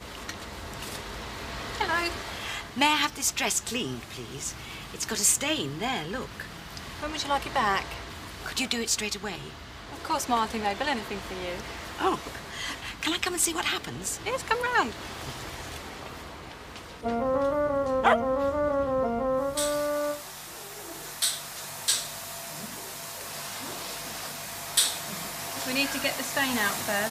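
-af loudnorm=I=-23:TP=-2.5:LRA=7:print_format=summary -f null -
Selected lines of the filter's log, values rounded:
Input Integrated:    -28.5 LUFS
Input True Peak:      -7.2 dBTP
Input LRA:             3.9 LU
Input Threshold:     -38.9 LUFS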